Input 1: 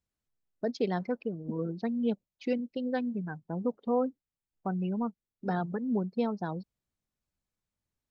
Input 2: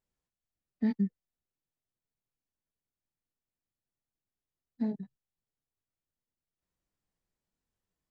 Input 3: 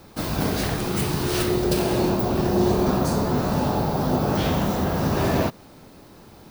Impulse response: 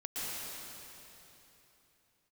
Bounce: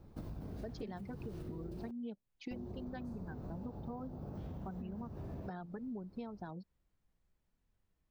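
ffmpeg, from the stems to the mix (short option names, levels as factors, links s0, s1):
-filter_complex "[0:a]bandreject=f=500:w=12,volume=0.596[s0];[1:a]lowpass=3000,acompressor=threshold=0.0178:ratio=2.5,volume=1.41[s1];[2:a]tiltshelf=f=1100:g=7.5,volume=0.1,asplit=3[s2][s3][s4];[s2]atrim=end=1.91,asetpts=PTS-STARTPTS,afade=t=out:st=1.906:d=0.004:c=hsin[s5];[s3]atrim=start=1.91:end=2.51,asetpts=PTS-STARTPTS,volume=0[s6];[s4]atrim=start=2.51,asetpts=PTS-STARTPTS,afade=t=in:d=0.004:c=hsin[s7];[s5][s6][s7]concat=n=3:v=0:a=1[s8];[s1][s8]amix=inputs=2:normalize=0,lowshelf=f=110:g=12,acompressor=threshold=0.0141:ratio=4,volume=1[s9];[s0][s9]amix=inputs=2:normalize=0,acompressor=threshold=0.00891:ratio=6"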